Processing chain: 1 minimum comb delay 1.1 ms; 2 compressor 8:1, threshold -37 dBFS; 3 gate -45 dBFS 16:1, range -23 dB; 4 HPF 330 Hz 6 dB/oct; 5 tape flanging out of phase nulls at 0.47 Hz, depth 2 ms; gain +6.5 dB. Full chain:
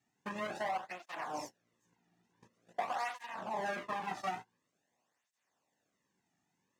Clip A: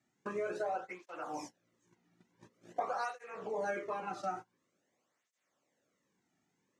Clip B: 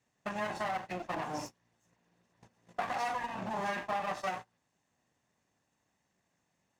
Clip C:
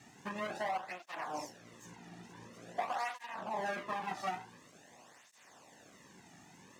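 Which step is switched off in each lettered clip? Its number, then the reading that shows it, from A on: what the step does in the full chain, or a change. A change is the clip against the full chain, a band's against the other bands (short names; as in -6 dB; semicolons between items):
1, 500 Hz band +6.0 dB; 5, 125 Hz band +4.5 dB; 3, momentary loudness spread change +13 LU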